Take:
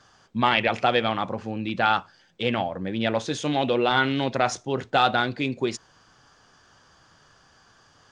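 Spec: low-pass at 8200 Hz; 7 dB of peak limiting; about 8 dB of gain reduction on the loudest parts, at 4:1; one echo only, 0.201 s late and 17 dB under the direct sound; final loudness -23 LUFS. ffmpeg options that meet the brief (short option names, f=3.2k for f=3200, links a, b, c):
-af "lowpass=8.2k,acompressor=threshold=-25dB:ratio=4,alimiter=limit=-18dB:level=0:latency=1,aecho=1:1:201:0.141,volume=8.5dB"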